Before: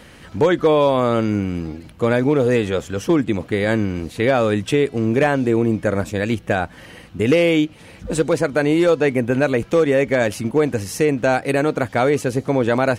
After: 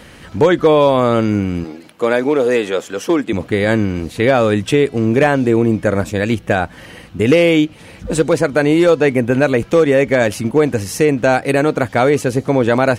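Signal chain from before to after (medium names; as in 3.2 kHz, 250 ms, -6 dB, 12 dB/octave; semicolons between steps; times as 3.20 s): 1.64–3.33 s: high-pass 310 Hz 12 dB/octave; trim +4 dB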